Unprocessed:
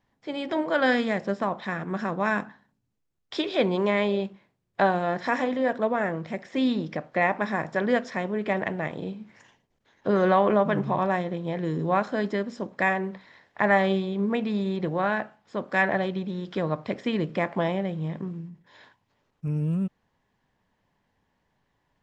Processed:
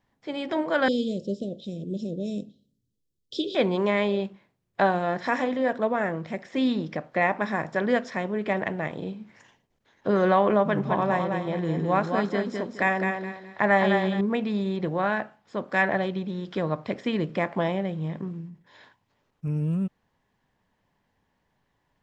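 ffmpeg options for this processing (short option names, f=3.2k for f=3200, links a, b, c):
-filter_complex "[0:a]asettb=1/sr,asplit=3[a][b][c];[a]atrim=end=0.884[d];[b]atrim=start=0.88:end=3.55,asetpts=PTS-STARTPTS,afade=t=in:d=0.004:c=qsin,afade=t=out:st=2.666:d=0.004:c=qsin,asuperstop=centerf=1300:order=12:qfactor=0.51[e];[c]atrim=start=3.546[f];[d][e]acrossfade=d=0.004:c1=hsin:c2=qsin[g];[g][f]acrossfade=d=0.004:c1=qsin:c2=hsin,asettb=1/sr,asplit=3[h][i][j];[h]atrim=end=10.644[k];[i]atrim=start=10.64:end=14.21,asetpts=PTS-STARTPTS,afade=t=in:d=0.004:c=qsin,afade=t=out:st=3.566:d=0.004:c=qsin,aecho=1:1:210|420|630|840:0.562|0.163|0.0473|0.0137,atrim=end_sample=157437[l];[j]atrim=start=14.206[m];[k][l]acrossfade=d=0.004:c1=hsin:c2=qsin[n];[n][m]acrossfade=d=0.004:c1=qsin:c2=hsin"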